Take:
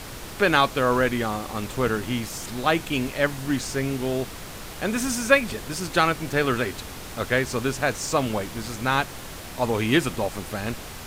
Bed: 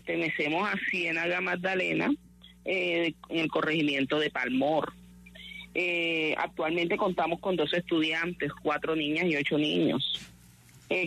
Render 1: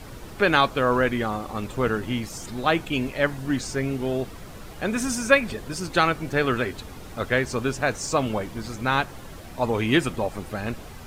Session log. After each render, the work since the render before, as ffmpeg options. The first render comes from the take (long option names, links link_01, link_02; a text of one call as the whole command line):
ffmpeg -i in.wav -af "afftdn=noise_reduction=9:noise_floor=-38" out.wav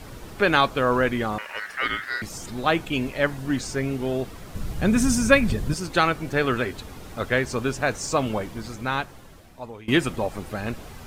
ffmpeg -i in.wav -filter_complex "[0:a]asettb=1/sr,asplit=3[link_01][link_02][link_03];[link_01]atrim=end=1.384[link_04];[link_02]atrim=start=1.38:end=2.22,asetpts=PTS-STARTPTS,afade=type=in:duration=0.004:curve=qsin,afade=type=out:start_time=0.836:duration=0.004:curve=qsin,aeval=exprs='val(0)*sin(2*PI*1700*n/s)':channel_layout=same[link_05];[link_03]atrim=start=2.216[link_06];[link_04][link_05]acrossfade=duration=0.004:curve1=hsin:curve2=qsin[link_07];[link_07][link_06]acrossfade=duration=0.004:curve1=qsin:curve2=hsin,asettb=1/sr,asplit=3[link_08][link_09][link_10];[link_08]atrim=end=4.554[link_11];[link_09]atrim=start=4.55:end=5.74,asetpts=PTS-STARTPTS,afade=type=in:duration=0.004:curve=qsin,afade=type=out:start_time=1.186:duration=0.004:curve=qsin,bass=frequency=250:gain=13,treble=frequency=4000:gain=3[link_12];[link_10]atrim=start=5.736[link_13];[link_11][link_12]acrossfade=duration=0.004:curve1=hsin:curve2=qsin[link_14];[link_14][link_13]acrossfade=duration=0.004:curve1=qsin:curve2=hsin,asplit=2[link_15][link_16];[link_15]atrim=end=9.88,asetpts=PTS-STARTPTS,afade=type=out:start_time=8.41:duration=1.47:silence=0.0841395[link_17];[link_16]atrim=start=9.88,asetpts=PTS-STARTPTS,afade=type=in:duration=0.004:curve=hsin:silence=0.0841395[link_18];[link_17][link_18]concat=n=2:v=0:a=1" out.wav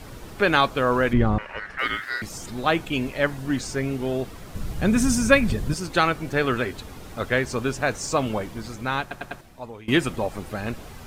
ffmpeg -i in.wav -filter_complex "[0:a]asettb=1/sr,asplit=3[link_01][link_02][link_03];[link_01]atrim=end=1.134[link_04];[link_02]atrim=start=1.13:end=1.79,asetpts=PTS-STARTPTS,afade=type=in:duration=0.004:curve=qsin,afade=type=out:start_time=0.656:duration=0.004:curve=qsin,aemphasis=mode=reproduction:type=riaa[link_05];[link_03]atrim=start=1.786[link_06];[link_04][link_05]acrossfade=duration=0.004:curve1=hsin:curve2=qsin[link_07];[link_07][link_06]acrossfade=duration=0.004:curve1=qsin:curve2=hsin,asplit=5[link_08][link_09][link_10][link_11][link_12];[link_08]atrim=end=9.112[link_13];[link_09]atrim=start=9.008:end=9.112[link_14];[link_10]atrim=start=9.008:end=9.112[link_15];[link_11]atrim=start=9.008:end=9.112[link_16];[link_12]atrim=start=9.408[link_17];[link_13][link_14]acrossfade=duration=0.004:curve1=hsin:curve2=hsin[link_18];[link_18][link_15]acrossfade=duration=0.004:curve1=hsin:curve2=hsin[link_19];[link_19][link_16]acrossfade=duration=0.004:curve1=hsin:curve2=hsin[link_20];[link_20][link_17]acrossfade=duration=0.004:curve1=hsin:curve2=hsin" out.wav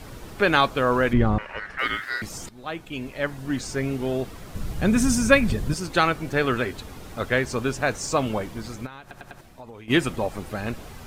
ffmpeg -i in.wav -filter_complex "[0:a]asplit=3[link_01][link_02][link_03];[link_01]afade=type=out:start_time=8.85:duration=0.02[link_04];[link_02]acompressor=threshold=-36dB:ratio=16:attack=3.2:release=140:knee=1:detection=peak,afade=type=in:start_time=8.85:duration=0.02,afade=type=out:start_time=9.89:duration=0.02[link_05];[link_03]afade=type=in:start_time=9.89:duration=0.02[link_06];[link_04][link_05][link_06]amix=inputs=3:normalize=0,asplit=2[link_07][link_08];[link_07]atrim=end=2.49,asetpts=PTS-STARTPTS,afade=type=out:start_time=2.486:duration=0.004:curve=hsin:silence=0.141254[link_09];[link_08]atrim=start=2.49,asetpts=PTS-STARTPTS,afade=type=in:duration=1.36:silence=0.141254[link_10];[link_09][link_10]concat=n=2:v=0:a=1" out.wav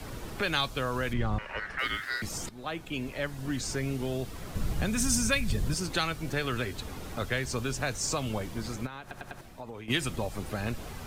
ffmpeg -i in.wav -filter_complex "[0:a]acrossover=split=560|1300[link_01][link_02][link_03];[link_01]alimiter=limit=-19.5dB:level=0:latency=1[link_04];[link_04][link_02][link_03]amix=inputs=3:normalize=0,acrossover=split=140|3000[link_05][link_06][link_07];[link_06]acompressor=threshold=-33dB:ratio=3[link_08];[link_05][link_08][link_07]amix=inputs=3:normalize=0" out.wav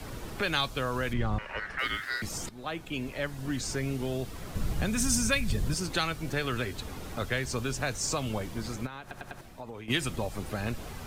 ffmpeg -i in.wav -af anull out.wav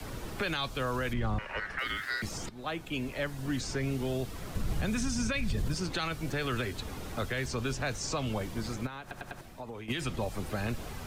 ffmpeg -i in.wav -filter_complex "[0:a]acrossover=split=210|540|6000[link_01][link_02][link_03][link_04];[link_04]acompressor=threshold=-50dB:ratio=6[link_05];[link_01][link_02][link_03][link_05]amix=inputs=4:normalize=0,alimiter=limit=-22.5dB:level=0:latency=1:release=33" out.wav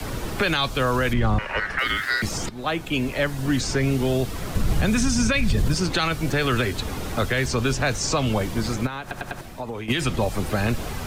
ffmpeg -i in.wav -af "volume=10.5dB" out.wav